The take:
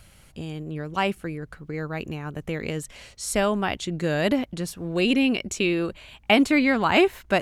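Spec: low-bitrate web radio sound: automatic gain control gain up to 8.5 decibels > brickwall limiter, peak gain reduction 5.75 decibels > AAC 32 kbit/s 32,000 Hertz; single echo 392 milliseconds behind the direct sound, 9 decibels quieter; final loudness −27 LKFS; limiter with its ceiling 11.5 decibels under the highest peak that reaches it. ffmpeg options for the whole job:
ffmpeg -i in.wav -af "alimiter=limit=-17.5dB:level=0:latency=1,aecho=1:1:392:0.355,dynaudnorm=maxgain=8.5dB,alimiter=limit=-21dB:level=0:latency=1,volume=4dB" -ar 32000 -c:a aac -b:a 32k out.aac

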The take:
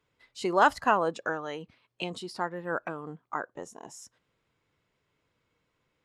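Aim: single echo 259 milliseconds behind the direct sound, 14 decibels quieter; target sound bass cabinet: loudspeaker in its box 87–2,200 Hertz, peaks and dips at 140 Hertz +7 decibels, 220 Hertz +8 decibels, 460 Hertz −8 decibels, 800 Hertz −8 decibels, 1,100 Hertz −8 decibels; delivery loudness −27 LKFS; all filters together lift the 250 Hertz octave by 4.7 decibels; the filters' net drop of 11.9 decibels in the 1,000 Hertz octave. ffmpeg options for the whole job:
ffmpeg -i in.wav -af "highpass=frequency=87:width=0.5412,highpass=frequency=87:width=1.3066,equalizer=frequency=140:width_type=q:width=4:gain=7,equalizer=frequency=220:width_type=q:width=4:gain=8,equalizer=frequency=460:width_type=q:width=4:gain=-8,equalizer=frequency=800:width_type=q:width=4:gain=-8,equalizer=frequency=1100:width_type=q:width=4:gain=-8,lowpass=frequency=2200:width=0.5412,lowpass=frequency=2200:width=1.3066,equalizer=frequency=250:width_type=o:gain=4,equalizer=frequency=1000:width_type=o:gain=-7.5,aecho=1:1:259:0.2,volume=7dB" out.wav

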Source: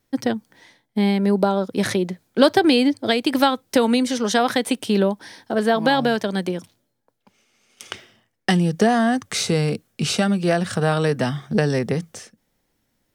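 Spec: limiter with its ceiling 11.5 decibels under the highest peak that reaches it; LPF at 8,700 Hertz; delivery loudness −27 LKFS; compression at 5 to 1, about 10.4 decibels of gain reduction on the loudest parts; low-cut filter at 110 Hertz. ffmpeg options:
ffmpeg -i in.wav -af "highpass=110,lowpass=8700,acompressor=threshold=-22dB:ratio=5,volume=2dB,alimiter=limit=-17dB:level=0:latency=1" out.wav

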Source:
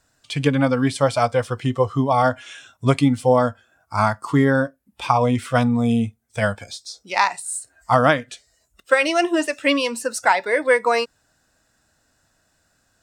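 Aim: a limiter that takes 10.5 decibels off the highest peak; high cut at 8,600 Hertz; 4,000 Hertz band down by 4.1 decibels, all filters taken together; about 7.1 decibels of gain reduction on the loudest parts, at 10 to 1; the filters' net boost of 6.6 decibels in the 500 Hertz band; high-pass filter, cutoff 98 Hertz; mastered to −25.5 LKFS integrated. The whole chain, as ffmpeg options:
ffmpeg -i in.wav -af "highpass=98,lowpass=8600,equalizer=frequency=500:width_type=o:gain=7.5,equalizer=frequency=4000:width_type=o:gain=-6,acompressor=threshold=-12dB:ratio=10,volume=-2.5dB,alimiter=limit=-14dB:level=0:latency=1" out.wav

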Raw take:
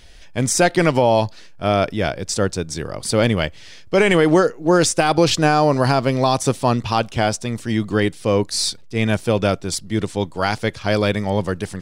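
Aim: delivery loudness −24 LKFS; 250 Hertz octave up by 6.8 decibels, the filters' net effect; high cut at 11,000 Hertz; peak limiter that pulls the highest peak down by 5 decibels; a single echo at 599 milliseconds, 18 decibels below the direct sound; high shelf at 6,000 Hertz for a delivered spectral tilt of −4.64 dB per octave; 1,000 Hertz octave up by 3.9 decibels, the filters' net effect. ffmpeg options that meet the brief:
ffmpeg -i in.wav -af "lowpass=11000,equalizer=frequency=250:width_type=o:gain=9,equalizer=frequency=1000:width_type=o:gain=4.5,highshelf=frequency=6000:gain=8,alimiter=limit=-5dB:level=0:latency=1,aecho=1:1:599:0.126,volume=-7dB" out.wav

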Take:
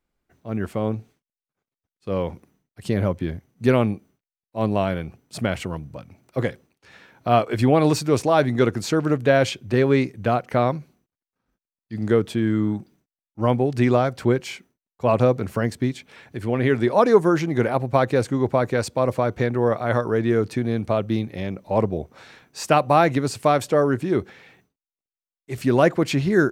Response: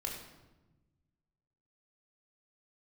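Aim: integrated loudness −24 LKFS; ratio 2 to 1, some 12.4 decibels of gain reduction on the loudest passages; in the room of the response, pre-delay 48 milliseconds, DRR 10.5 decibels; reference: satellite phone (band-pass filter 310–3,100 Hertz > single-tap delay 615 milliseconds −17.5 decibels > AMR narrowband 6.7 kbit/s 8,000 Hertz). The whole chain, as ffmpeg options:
-filter_complex "[0:a]acompressor=threshold=-33dB:ratio=2,asplit=2[link_01][link_02];[1:a]atrim=start_sample=2205,adelay=48[link_03];[link_02][link_03]afir=irnorm=-1:irlink=0,volume=-11.5dB[link_04];[link_01][link_04]amix=inputs=2:normalize=0,highpass=310,lowpass=3100,aecho=1:1:615:0.133,volume=10dB" -ar 8000 -c:a libopencore_amrnb -b:a 6700

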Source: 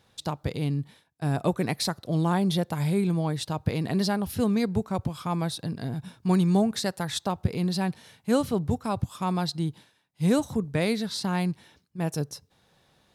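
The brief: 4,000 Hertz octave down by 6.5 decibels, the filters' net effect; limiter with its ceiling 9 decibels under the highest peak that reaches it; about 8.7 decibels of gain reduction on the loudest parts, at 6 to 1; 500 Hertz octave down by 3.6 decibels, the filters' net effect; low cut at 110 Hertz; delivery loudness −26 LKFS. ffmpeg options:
ffmpeg -i in.wav -af "highpass=110,equalizer=frequency=500:width_type=o:gain=-4.5,equalizer=frequency=4000:width_type=o:gain=-7.5,acompressor=threshold=-29dB:ratio=6,volume=10.5dB,alimiter=limit=-16.5dB:level=0:latency=1" out.wav

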